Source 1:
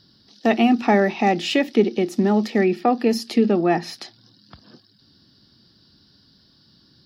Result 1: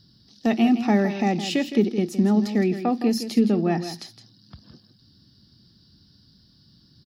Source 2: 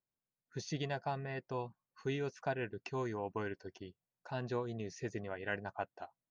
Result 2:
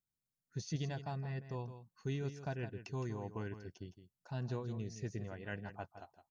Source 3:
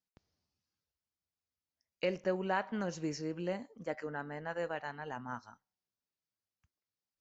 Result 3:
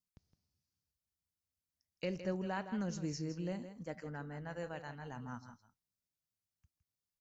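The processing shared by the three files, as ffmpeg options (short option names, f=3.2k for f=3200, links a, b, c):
-af "bass=f=250:g=12,treble=f=4k:g=8,aecho=1:1:163:0.282,volume=-7.5dB"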